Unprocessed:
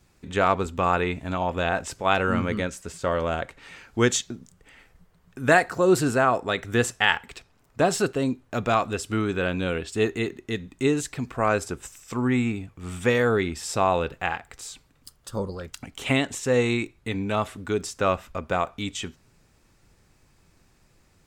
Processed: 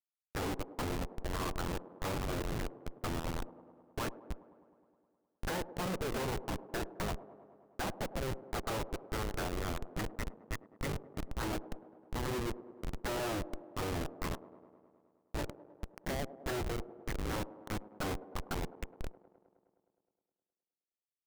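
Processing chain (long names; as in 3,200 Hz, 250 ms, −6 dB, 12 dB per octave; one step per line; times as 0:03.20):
adaptive Wiener filter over 41 samples
gate on every frequency bin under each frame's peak −10 dB weak
treble cut that deepens with the level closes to 700 Hz, closed at −31 dBFS
elliptic low-pass filter 2,100 Hz, stop band 40 dB
spectral tilt +2.5 dB per octave
in parallel at −1.5 dB: downward compressor 8 to 1, threshold −53 dBFS, peak gain reduction 24.5 dB
on the sum: comparator with hysteresis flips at −41 dBFS
on a send: delay with a band-pass on its return 104 ms, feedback 72%, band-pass 440 Hz, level −13 dB
on the sum: level +7 dB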